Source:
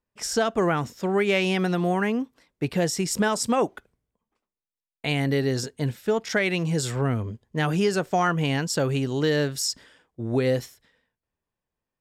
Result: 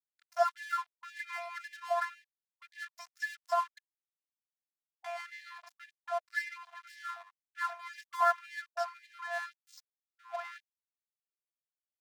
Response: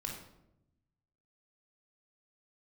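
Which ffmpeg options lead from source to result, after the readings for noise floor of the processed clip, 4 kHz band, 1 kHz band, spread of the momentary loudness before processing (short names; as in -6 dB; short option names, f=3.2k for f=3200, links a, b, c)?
under -85 dBFS, -19.0 dB, -5.0 dB, 7 LU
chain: -filter_complex "[0:a]asuperstop=centerf=3100:order=4:qfactor=0.75,acrossover=split=320 4700:gain=0.0631 1 0.112[a][b][c];[a][b][c]amix=inputs=3:normalize=0,acrossover=split=3000[d][e];[e]adelay=90[f];[d][f]amix=inputs=2:normalize=0,afftfilt=real='hypot(re,im)*cos(PI*b)':imag='0':win_size=512:overlap=0.75,acrossover=split=270|1600[g][h][i];[g]acompressor=threshold=-50dB:ratio=5[j];[j][h][i]amix=inputs=3:normalize=0,highshelf=f=5.5k:t=q:w=1.5:g=-11,aeval=exprs='sgn(val(0))*max(abs(val(0))-0.00596,0)':c=same,afftfilt=real='re*gte(b*sr/1024,630*pow(1700/630,0.5+0.5*sin(2*PI*1.9*pts/sr)))':imag='im*gte(b*sr/1024,630*pow(1700/630,0.5+0.5*sin(2*PI*1.9*pts/sr)))':win_size=1024:overlap=0.75,volume=3dB"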